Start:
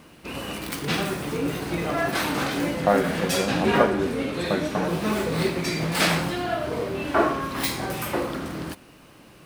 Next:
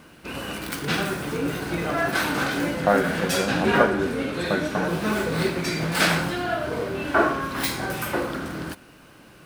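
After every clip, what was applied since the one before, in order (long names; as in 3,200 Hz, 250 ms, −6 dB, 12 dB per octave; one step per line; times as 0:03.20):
parametric band 1,500 Hz +8 dB 0.2 octaves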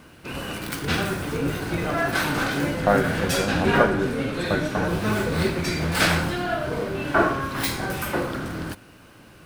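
sub-octave generator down 1 octave, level −3 dB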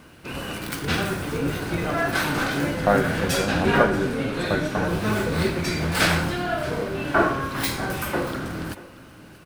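single-tap delay 632 ms −18.5 dB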